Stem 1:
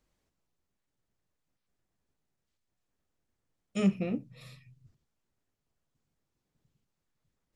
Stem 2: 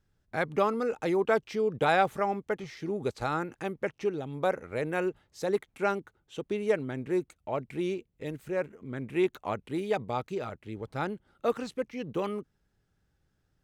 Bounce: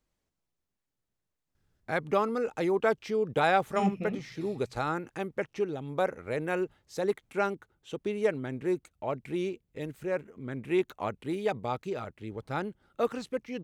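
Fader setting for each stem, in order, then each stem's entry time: -3.5 dB, -0.5 dB; 0.00 s, 1.55 s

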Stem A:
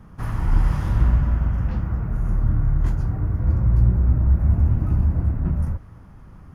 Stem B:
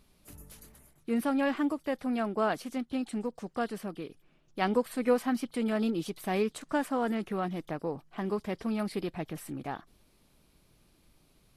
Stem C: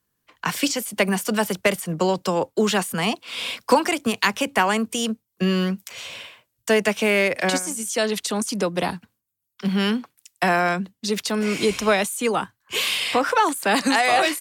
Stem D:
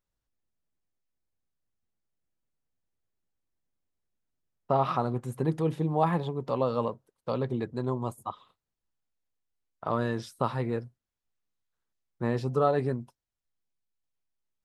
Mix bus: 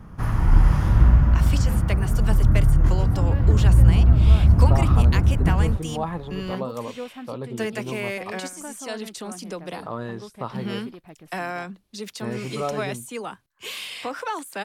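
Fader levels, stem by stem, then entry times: +3.0 dB, -9.0 dB, -10.5 dB, -3.0 dB; 0.00 s, 1.90 s, 0.90 s, 0.00 s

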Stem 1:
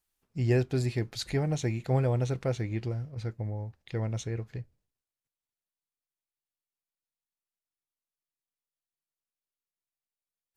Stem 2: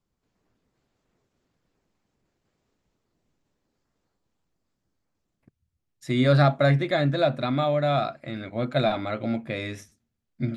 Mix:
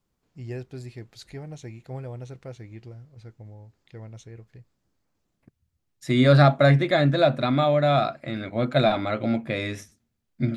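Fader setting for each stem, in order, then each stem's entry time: -9.5 dB, +3.0 dB; 0.00 s, 0.00 s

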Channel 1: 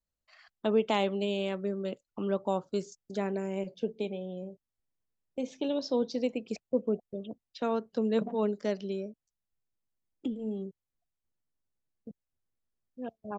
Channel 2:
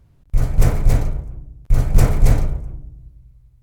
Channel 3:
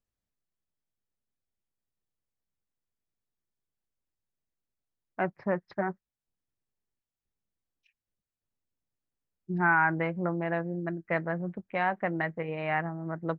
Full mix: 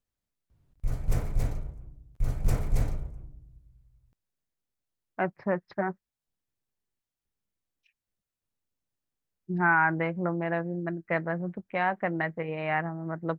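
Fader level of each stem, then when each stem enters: mute, -13.0 dB, +1.0 dB; mute, 0.50 s, 0.00 s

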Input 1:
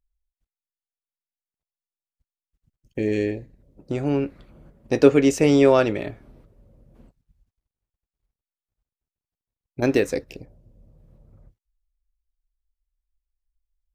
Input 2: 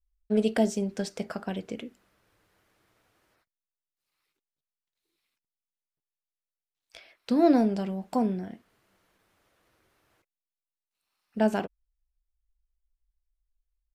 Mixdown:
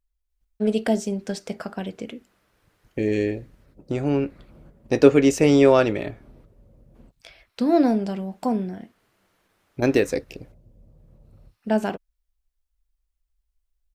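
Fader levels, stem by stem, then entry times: +0.5 dB, +2.5 dB; 0.00 s, 0.30 s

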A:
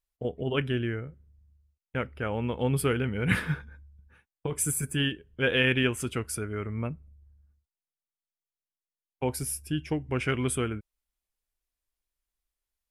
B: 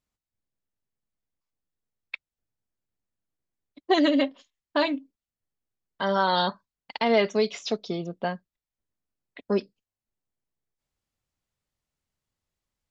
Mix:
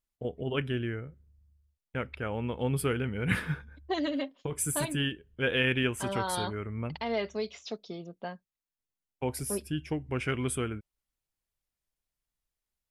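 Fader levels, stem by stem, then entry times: -3.0 dB, -10.0 dB; 0.00 s, 0.00 s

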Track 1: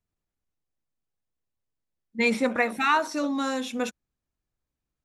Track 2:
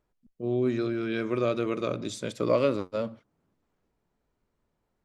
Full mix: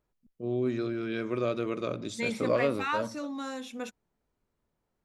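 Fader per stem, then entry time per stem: -9.0 dB, -3.0 dB; 0.00 s, 0.00 s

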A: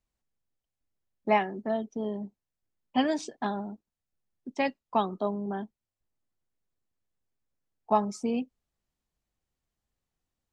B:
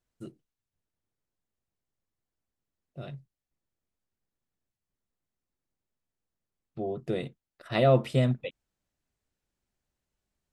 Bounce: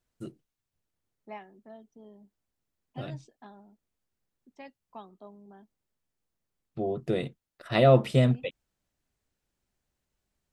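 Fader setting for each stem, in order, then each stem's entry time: -19.0 dB, +2.5 dB; 0.00 s, 0.00 s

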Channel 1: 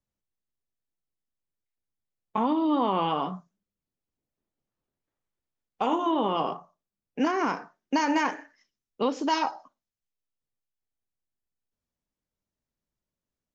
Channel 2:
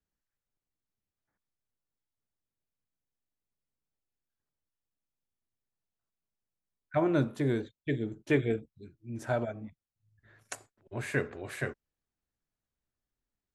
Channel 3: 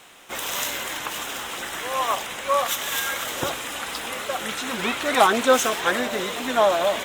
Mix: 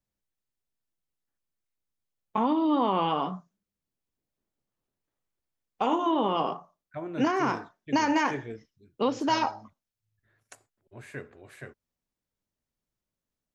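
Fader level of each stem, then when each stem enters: 0.0 dB, -9.5 dB, mute; 0.00 s, 0.00 s, mute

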